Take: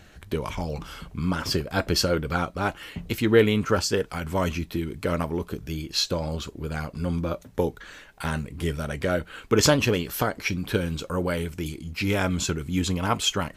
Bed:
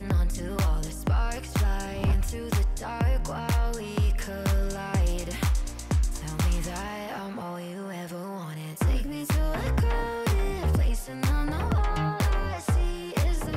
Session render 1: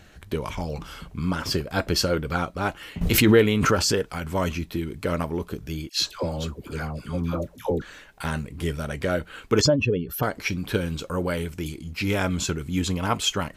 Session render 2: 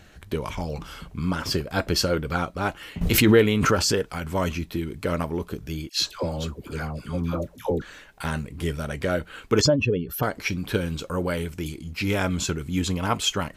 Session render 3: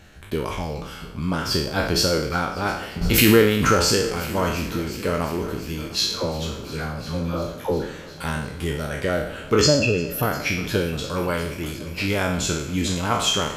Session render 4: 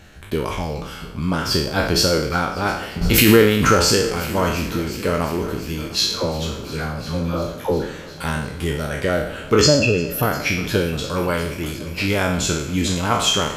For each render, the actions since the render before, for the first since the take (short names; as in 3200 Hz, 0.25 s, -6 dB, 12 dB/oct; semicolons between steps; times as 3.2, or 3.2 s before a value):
3.01–4.03 backwards sustainer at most 26 dB/s; 5.89–7.82 dispersion lows, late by 0.123 s, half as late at 830 Hz; 9.61–10.23 spectral contrast raised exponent 2
nothing audible
spectral trails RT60 0.68 s; multi-head echo 0.352 s, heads all three, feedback 60%, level -22 dB
gain +3 dB; limiter -1 dBFS, peak gain reduction 2.5 dB